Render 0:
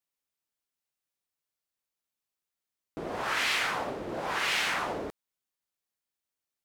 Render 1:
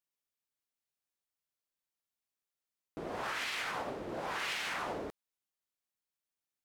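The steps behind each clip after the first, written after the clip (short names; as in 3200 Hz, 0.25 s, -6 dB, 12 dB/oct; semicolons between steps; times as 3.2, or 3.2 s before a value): limiter -23.5 dBFS, peak gain reduction 7 dB; gain -4.5 dB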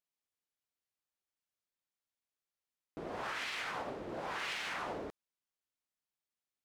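high shelf 9500 Hz -8 dB; gain -2 dB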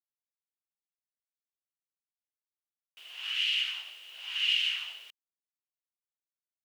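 bit-crush 10-bit; resonant high-pass 2900 Hz, resonance Q 13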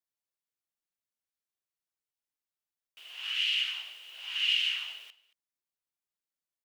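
echo 0.226 s -20.5 dB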